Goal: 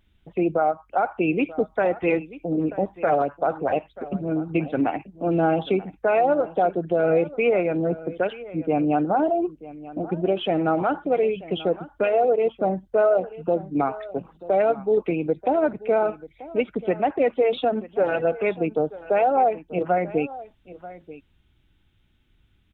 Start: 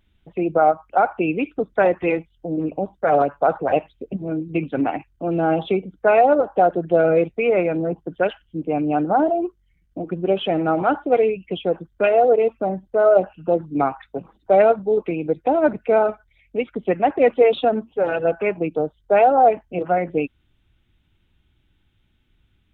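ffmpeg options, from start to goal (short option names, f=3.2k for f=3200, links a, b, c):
-filter_complex "[0:a]alimiter=limit=-11.5dB:level=0:latency=1:release=320,asplit=2[a][b];[b]aecho=0:1:936:0.133[c];[a][c]amix=inputs=2:normalize=0"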